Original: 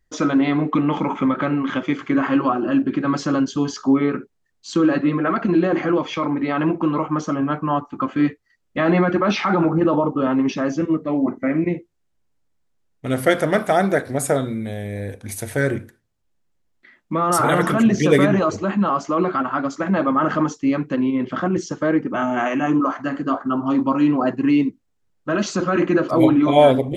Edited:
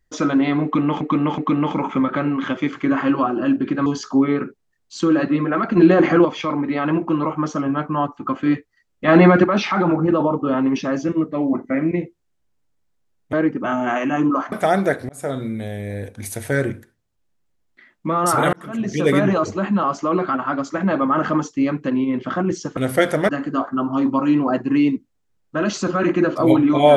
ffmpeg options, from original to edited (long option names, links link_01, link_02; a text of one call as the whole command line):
ffmpeg -i in.wav -filter_complex "[0:a]asplit=14[link_01][link_02][link_03][link_04][link_05][link_06][link_07][link_08][link_09][link_10][link_11][link_12][link_13][link_14];[link_01]atrim=end=1.012[link_15];[link_02]atrim=start=0.638:end=1.012[link_16];[link_03]atrim=start=0.638:end=3.122[link_17];[link_04]atrim=start=3.588:end=5.502[link_18];[link_05]atrim=start=5.498:end=5.982,asetpts=PTS-STARTPTS,volume=5.5dB[link_19];[link_06]atrim=start=5.978:end=8.812[link_20];[link_07]atrim=start=8.808:end=9.172,asetpts=PTS-STARTPTS,volume=6dB[link_21];[link_08]atrim=start=9.168:end=13.062[link_22];[link_09]atrim=start=21.828:end=23.022[link_23];[link_10]atrim=start=13.578:end=14.15,asetpts=PTS-STARTPTS,afade=type=out:start_time=0.568:duration=0.004:curve=hsin[link_24];[link_11]atrim=start=14.15:end=17.59,asetpts=PTS-STARTPTS,afade=type=in:duration=0.37,afade=type=out:start_time=3.436:duration=0.004:curve=hsin[link_25];[link_12]atrim=start=17.59:end=21.832,asetpts=PTS-STARTPTS,afade=type=in:duration=0.73[link_26];[link_13]atrim=start=13.058:end=13.582[link_27];[link_14]atrim=start=23.018[link_28];[link_15][link_16]acrossfade=duration=0.004:curve1=hsin:curve2=hsin[link_29];[link_29][link_17]acrossfade=duration=0.004:curve1=hsin:curve2=hsin[link_30];[link_30][link_18]acrossfade=duration=0.004:curve1=hsin:curve2=hsin[link_31];[link_31][link_19]acrossfade=duration=0.004:curve1=hsin:curve2=hsin[link_32];[link_32][link_20]acrossfade=duration=0.004:curve1=hsin:curve2=hsin[link_33];[link_33][link_21]acrossfade=duration=0.004:curve1=hsin:curve2=hsin[link_34];[link_34][link_22]acrossfade=duration=0.004:curve1=hsin:curve2=hsin[link_35];[link_35][link_23]acrossfade=duration=0.004:curve1=hsin:curve2=hsin[link_36];[link_24][link_25][link_26]concat=n=3:v=0:a=1[link_37];[link_36][link_37]acrossfade=duration=0.004:curve1=hsin:curve2=hsin[link_38];[link_38][link_27]acrossfade=duration=0.004:curve1=hsin:curve2=hsin[link_39];[link_39][link_28]acrossfade=duration=0.004:curve1=hsin:curve2=hsin" out.wav